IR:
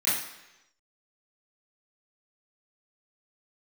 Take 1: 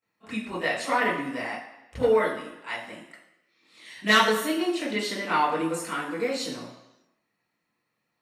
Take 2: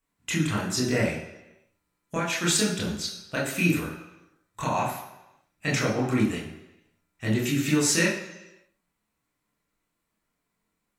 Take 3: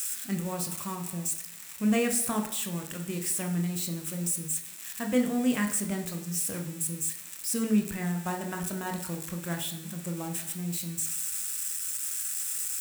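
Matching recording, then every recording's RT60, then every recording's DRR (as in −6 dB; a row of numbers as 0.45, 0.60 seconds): 1; 1.0, 1.0, 0.95 seconds; −13.5, −5.5, 4.0 decibels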